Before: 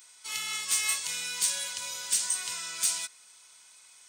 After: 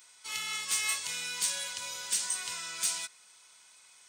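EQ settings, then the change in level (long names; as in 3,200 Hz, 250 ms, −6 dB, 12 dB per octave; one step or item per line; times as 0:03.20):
high-shelf EQ 5,100 Hz −5 dB
0.0 dB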